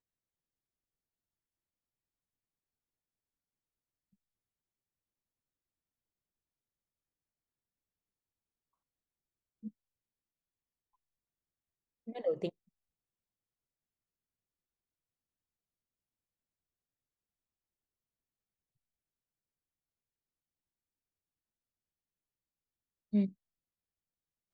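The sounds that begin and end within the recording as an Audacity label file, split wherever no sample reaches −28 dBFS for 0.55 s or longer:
12.270000	12.470000	sound
23.140000	23.250000	sound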